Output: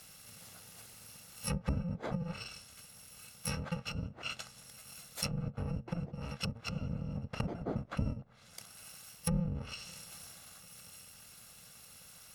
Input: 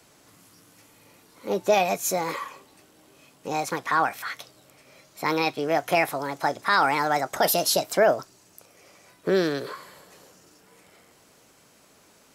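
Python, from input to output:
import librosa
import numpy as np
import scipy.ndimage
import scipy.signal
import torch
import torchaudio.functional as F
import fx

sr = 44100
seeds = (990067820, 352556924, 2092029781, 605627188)

y = fx.bit_reversed(x, sr, seeds[0], block=128)
y = fx.env_lowpass_down(y, sr, base_hz=360.0, full_db=-21.0)
y = y * 10.0 ** (4.0 / 20.0)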